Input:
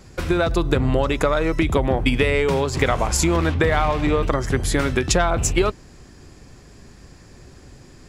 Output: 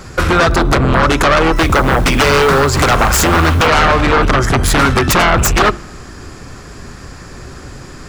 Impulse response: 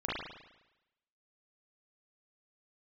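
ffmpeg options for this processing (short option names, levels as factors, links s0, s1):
-filter_complex "[0:a]bandreject=f=50:t=h:w=6,bandreject=f=100:t=h:w=6,bandreject=f=150:t=h:w=6,bandreject=f=200:t=h:w=6,bandreject=f=250:t=h:w=6,bandreject=f=300:t=h:w=6,bandreject=f=350:t=h:w=6,aeval=exprs='0.708*sin(PI/2*5.62*val(0)/0.708)':c=same,asettb=1/sr,asplit=3[s0][s1][s2];[s0]atrim=end=1.564[s3];[s1]atrim=start=1.56:end=3.67,asetpts=PTS-STARTPTS,afade=t=in:d=0.004:c=qsin,afade=t=out:st=2.106:d=0.004:c=qsin,acrusher=bits=6:mode=log:mix=0:aa=0.000001[s4];[s2]atrim=start=3.666[s5];[s3][s4]acrossfade=d=0.004:c1=hsin:c2=qsin[s6];[s6][s5]acrossfade=d=0.004:c1=qsin:c2=hsin,equalizer=f=1300:t=o:w=0.68:g=8,asplit=2[s7][s8];[1:a]atrim=start_sample=2205[s9];[s8][s9]afir=irnorm=-1:irlink=0,volume=0.0422[s10];[s7][s10]amix=inputs=2:normalize=0,volume=0.501"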